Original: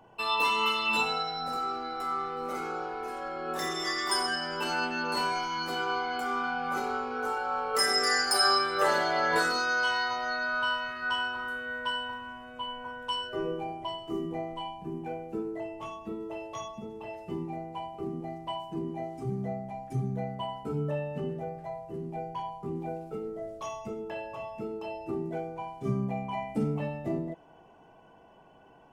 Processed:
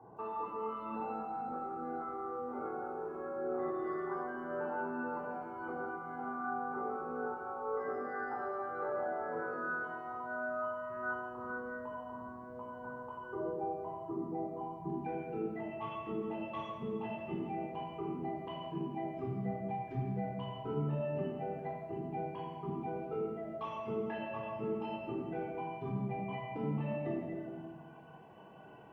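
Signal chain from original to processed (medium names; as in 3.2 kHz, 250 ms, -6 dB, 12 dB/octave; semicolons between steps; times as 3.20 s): high-pass 91 Hz 12 dB/octave; reverb removal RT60 1.6 s; low-pass 1.2 kHz 24 dB/octave, from 14.90 s 3.1 kHz; compression 4:1, threshold -42 dBFS, peak gain reduction 15.5 dB; simulated room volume 1400 m³, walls mixed, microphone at 3.8 m; bit-crushed delay 165 ms, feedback 55%, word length 12-bit, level -12 dB; trim -2 dB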